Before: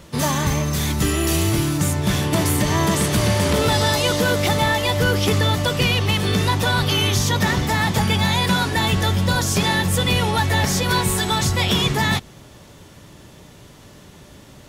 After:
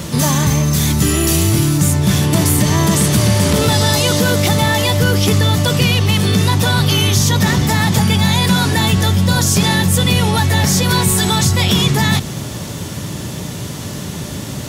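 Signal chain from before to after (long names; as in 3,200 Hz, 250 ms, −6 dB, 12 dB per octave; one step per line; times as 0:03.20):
high-pass filter 100 Hz
bass and treble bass +8 dB, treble +6 dB
in parallel at +1.5 dB: compressor whose output falls as the input rises −28 dBFS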